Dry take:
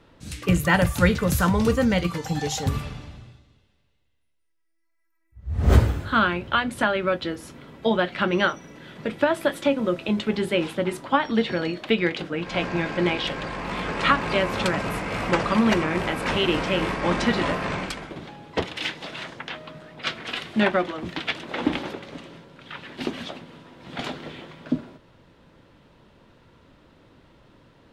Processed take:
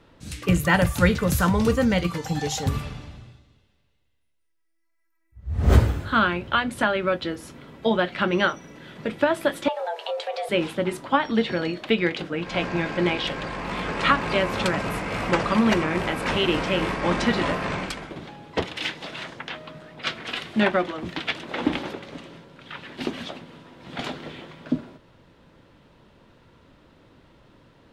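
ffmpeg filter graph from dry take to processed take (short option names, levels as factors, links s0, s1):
-filter_complex "[0:a]asettb=1/sr,asplit=3[s0][s1][s2];[s0]atrim=end=9.684[s3];[s1]atrim=start=9.68:end=10.49,asetpts=PTS-STARTPTS,afade=t=in:d=0.004:c=qsin,afade=t=out:st=0.806:d=0.004:c=qsin,afreqshift=320,acompressor=threshold=0.0447:ratio=2.5:attack=3.2:release=140:knee=1:detection=peak[s4];[s2]atrim=start=10.486[s5];[s3][s4]acrossfade=d=0.004:c1=hsin:c2=qsin[s6];[s6][s5]acrossfade=d=0.004:c1=qsin:c2=hsin"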